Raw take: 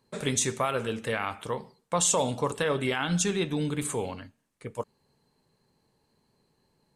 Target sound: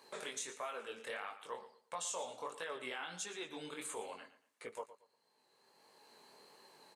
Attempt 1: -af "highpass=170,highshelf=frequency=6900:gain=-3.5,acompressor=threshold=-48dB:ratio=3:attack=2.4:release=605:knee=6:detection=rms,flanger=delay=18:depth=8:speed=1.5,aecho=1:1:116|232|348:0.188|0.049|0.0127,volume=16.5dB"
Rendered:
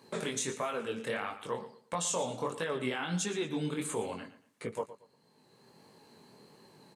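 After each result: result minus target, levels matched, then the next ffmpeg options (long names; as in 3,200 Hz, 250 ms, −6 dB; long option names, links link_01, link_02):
125 Hz band +14.5 dB; downward compressor: peak gain reduction −7 dB
-af "highpass=550,highshelf=frequency=6900:gain=-3.5,acompressor=threshold=-48dB:ratio=3:attack=2.4:release=605:knee=6:detection=rms,flanger=delay=18:depth=8:speed=1.5,aecho=1:1:116|232|348:0.188|0.049|0.0127,volume=16.5dB"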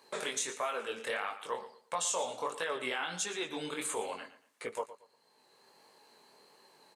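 downward compressor: peak gain reduction −8 dB
-af "highpass=550,highshelf=frequency=6900:gain=-3.5,acompressor=threshold=-60dB:ratio=3:attack=2.4:release=605:knee=6:detection=rms,flanger=delay=18:depth=8:speed=1.5,aecho=1:1:116|232|348:0.188|0.049|0.0127,volume=16.5dB"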